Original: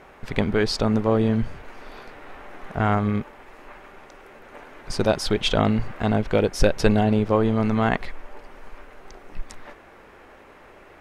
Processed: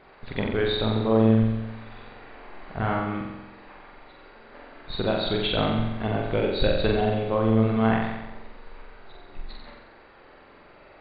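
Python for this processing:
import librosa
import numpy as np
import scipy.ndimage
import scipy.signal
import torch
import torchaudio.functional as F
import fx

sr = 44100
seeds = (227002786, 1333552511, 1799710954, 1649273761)

y = fx.freq_compress(x, sr, knee_hz=3400.0, ratio=4.0)
y = fx.room_flutter(y, sr, wall_m=7.7, rt60_s=1.0)
y = F.gain(torch.from_numpy(y), -6.0).numpy()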